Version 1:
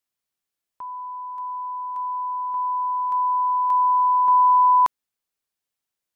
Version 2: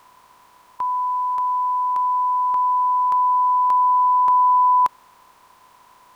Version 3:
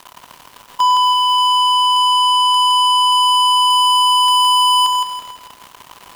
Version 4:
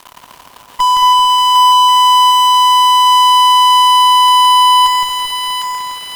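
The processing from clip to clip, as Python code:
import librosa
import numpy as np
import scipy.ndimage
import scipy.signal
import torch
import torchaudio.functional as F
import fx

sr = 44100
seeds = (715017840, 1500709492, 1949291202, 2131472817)

y1 = fx.bin_compress(x, sr, power=0.4)
y2 = fx.leveller(y1, sr, passes=5)
y2 = fx.echo_feedback(y2, sr, ms=165, feedback_pct=36, wet_db=-4.5)
y3 = fx.cheby_harmonics(y2, sr, harmonics=(6,), levels_db=(-20,), full_scale_db=-7.0)
y3 = fx.echo_split(y3, sr, split_hz=1100.0, low_ms=224, high_ms=754, feedback_pct=52, wet_db=-4)
y3 = y3 * librosa.db_to_amplitude(2.0)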